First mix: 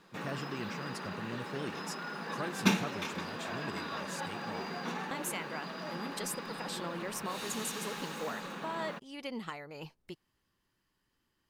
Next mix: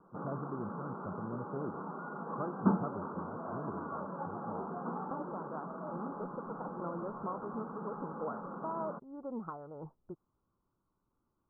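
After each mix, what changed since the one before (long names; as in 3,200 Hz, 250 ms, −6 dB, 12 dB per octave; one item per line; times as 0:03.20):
master: add Butterworth low-pass 1,400 Hz 96 dB per octave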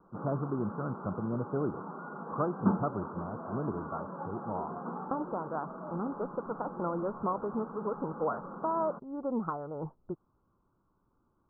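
speech +8.0 dB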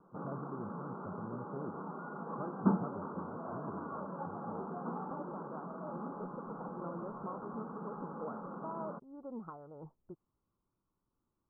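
speech −11.0 dB
master: add high-frequency loss of the air 410 metres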